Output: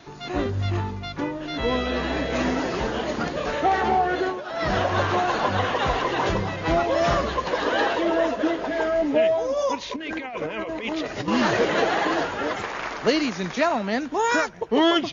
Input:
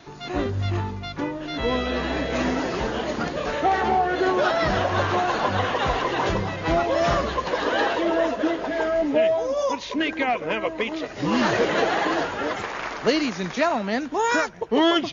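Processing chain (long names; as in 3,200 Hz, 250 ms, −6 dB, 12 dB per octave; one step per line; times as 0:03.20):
0:04.14–0:04.74: duck −16.5 dB, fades 0.29 s
0:09.96–0:11.28: compressor whose output falls as the input rises −30 dBFS, ratio −1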